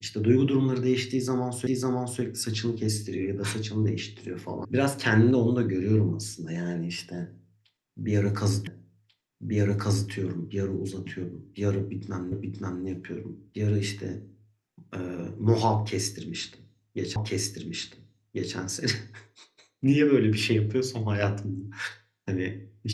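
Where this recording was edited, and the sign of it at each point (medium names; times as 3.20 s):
1.67 s: repeat of the last 0.55 s
4.65 s: sound stops dead
8.67 s: repeat of the last 1.44 s
12.32 s: repeat of the last 0.52 s
17.16 s: repeat of the last 1.39 s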